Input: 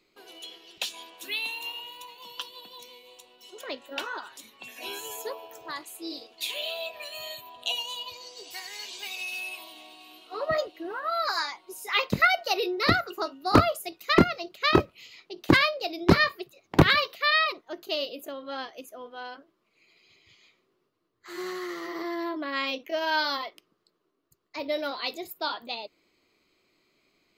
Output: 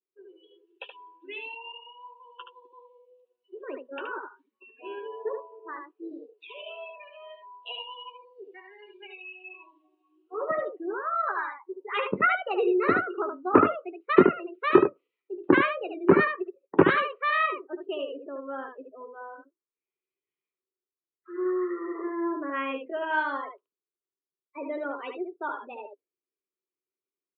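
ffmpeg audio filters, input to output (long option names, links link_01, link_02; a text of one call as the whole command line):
ffmpeg -i in.wav -af "highpass=250,equalizer=frequency=400:width_type=q:width=4:gain=8,equalizer=frequency=690:width_type=q:width=4:gain=-8,equalizer=frequency=2100:width_type=q:width=4:gain=-7,lowpass=frequency=2400:width=0.5412,lowpass=frequency=2400:width=1.3066,afftdn=noise_reduction=31:noise_floor=-39,aecho=1:1:11|74:0.335|0.531" out.wav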